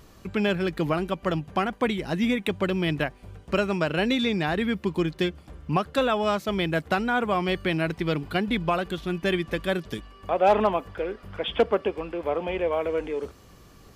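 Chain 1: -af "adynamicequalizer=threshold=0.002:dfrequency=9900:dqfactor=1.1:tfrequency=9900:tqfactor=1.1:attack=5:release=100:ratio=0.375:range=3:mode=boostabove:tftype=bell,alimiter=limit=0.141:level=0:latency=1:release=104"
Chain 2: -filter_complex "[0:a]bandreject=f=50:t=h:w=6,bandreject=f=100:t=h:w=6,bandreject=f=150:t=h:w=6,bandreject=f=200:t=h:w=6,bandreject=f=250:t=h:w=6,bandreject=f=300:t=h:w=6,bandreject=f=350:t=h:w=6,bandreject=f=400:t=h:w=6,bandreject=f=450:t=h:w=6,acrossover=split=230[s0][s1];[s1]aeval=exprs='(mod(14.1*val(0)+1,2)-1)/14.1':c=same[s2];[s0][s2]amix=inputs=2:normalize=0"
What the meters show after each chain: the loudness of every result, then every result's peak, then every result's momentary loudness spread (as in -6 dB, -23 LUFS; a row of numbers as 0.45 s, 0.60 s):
-28.5 LUFS, -28.5 LUFS; -17.0 dBFS, -16.5 dBFS; 6 LU, 7 LU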